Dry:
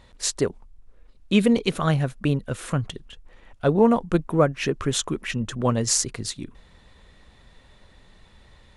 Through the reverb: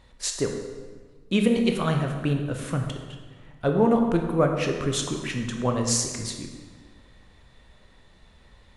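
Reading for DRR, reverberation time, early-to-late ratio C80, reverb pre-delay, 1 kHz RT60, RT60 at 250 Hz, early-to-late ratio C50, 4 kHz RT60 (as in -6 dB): 3.0 dB, 1.5 s, 6.5 dB, 14 ms, 1.5 s, 1.7 s, 4.5 dB, 1.2 s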